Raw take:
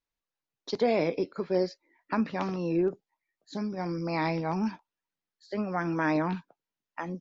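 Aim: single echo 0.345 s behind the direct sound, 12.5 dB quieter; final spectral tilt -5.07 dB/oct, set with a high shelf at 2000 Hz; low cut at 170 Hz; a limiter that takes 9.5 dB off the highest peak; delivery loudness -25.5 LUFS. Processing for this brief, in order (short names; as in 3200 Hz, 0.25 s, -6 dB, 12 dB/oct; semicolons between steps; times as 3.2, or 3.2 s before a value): HPF 170 Hz; high shelf 2000 Hz -8.5 dB; limiter -25.5 dBFS; echo 0.345 s -12.5 dB; gain +10 dB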